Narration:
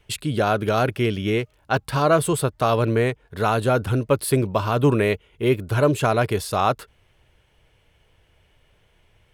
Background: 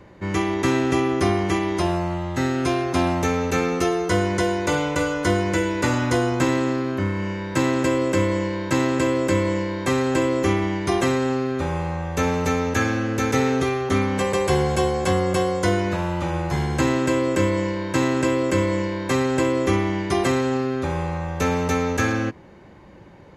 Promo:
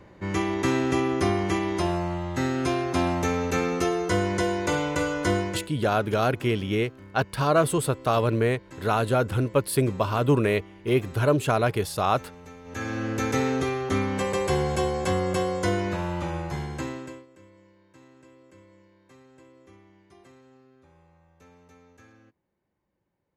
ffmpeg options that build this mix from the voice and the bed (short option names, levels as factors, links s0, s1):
-filter_complex "[0:a]adelay=5450,volume=0.708[s0];[1:a]volume=5.96,afade=t=out:st=5.37:d=0.31:silence=0.1,afade=t=in:st=12.64:d=0.43:silence=0.112202,afade=t=out:st=16.19:d=1.07:silence=0.0375837[s1];[s0][s1]amix=inputs=2:normalize=0"